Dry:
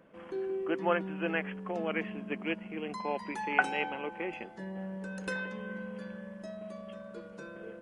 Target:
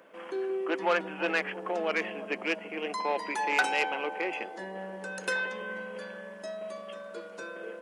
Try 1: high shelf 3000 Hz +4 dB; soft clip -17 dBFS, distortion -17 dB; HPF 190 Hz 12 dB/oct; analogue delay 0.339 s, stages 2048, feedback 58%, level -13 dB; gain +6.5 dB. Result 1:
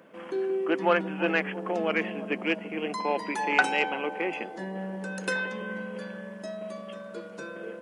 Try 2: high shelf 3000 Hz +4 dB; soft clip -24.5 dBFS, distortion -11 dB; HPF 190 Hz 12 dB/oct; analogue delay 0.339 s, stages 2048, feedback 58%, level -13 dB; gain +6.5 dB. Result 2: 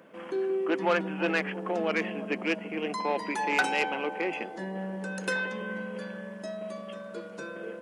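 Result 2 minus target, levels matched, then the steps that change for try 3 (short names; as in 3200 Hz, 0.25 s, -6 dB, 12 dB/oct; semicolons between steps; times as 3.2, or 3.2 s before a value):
250 Hz band +5.0 dB
change: HPF 400 Hz 12 dB/oct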